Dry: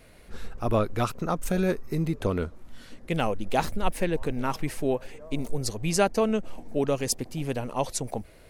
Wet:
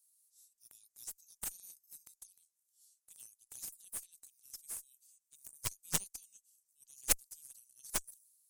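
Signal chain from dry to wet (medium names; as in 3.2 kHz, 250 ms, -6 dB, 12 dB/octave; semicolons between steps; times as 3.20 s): inverse Chebyshev high-pass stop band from 1.3 kHz, stop band 80 dB; Chebyshev shaper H 6 -15 dB, 7 -11 dB, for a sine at -15 dBFS; tape noise reduction on one side only decoder only; trim +2 dB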